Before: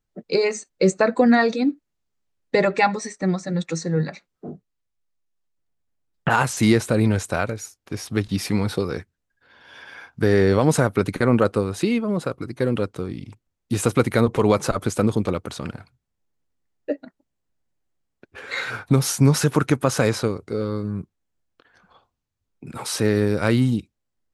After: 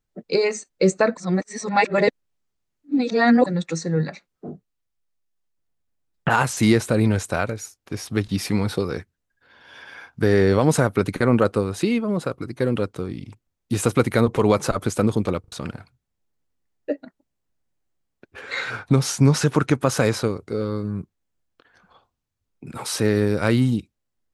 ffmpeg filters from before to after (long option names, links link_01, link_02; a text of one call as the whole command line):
ffmpeg -i in.wav -filter_complex "[0:a]asettb=1/sr,asplit=3[link_01][link_02][link_03];[link_01]atrim=end=18.414[link_04];[link_02]atrim=start=18.41:end=19.83,asetpts=PTS-STARTPTS,afade=type=in:duration=0.004:curve=qsin,afade=type=out:start_time=1.416:duration=0.004:curve=qsin,lowpass=8400[link_05];[link_03]atrim=start=19.826[link_06];[link_04][link_05]acrossfade=duration=0.004:curve1=hsin:curve2=qsin[link_07];[link_07][link_06]acrossfade=duration=0.004:curve1=qsin:curve2=hsin,asplit=6[link_08][link_09][link_10][link_11][link_12][link_13];[link_08]atrim=end=1.172[link_14];[link_09]atrim=start=1.168:end=3.462,asetpts=PTS-STARTPTS,areverse[link_15];[link_10]atrim=start=3.458:end=15.442[link_16];[link_11]atrim=start=15.398:end=15.442[link_17];[link_12]atrim=start=15.398:end=15.442[link_18];[link_13]atrim=start=15.518[link_19];[link_14][link_15]acrossfade=duration=0.004:curve1=hsin:curve2=hsin[link_20];[link_20][link_16]acrossfade=duration=0.004:curve1=hsin:curve2=hsin[link_21];[link_21][link_17]acrossfade=duration=0.004:curve1=hsin:curve2=hsin[link_22];[link_22][link_18]acrossfade=duration=0.004:curve1=hsin:curve2=hsin[link_23];[link_23][link_19]acrossfade=duration=0.004:curve1=hsin:curve2=hsin" out.wav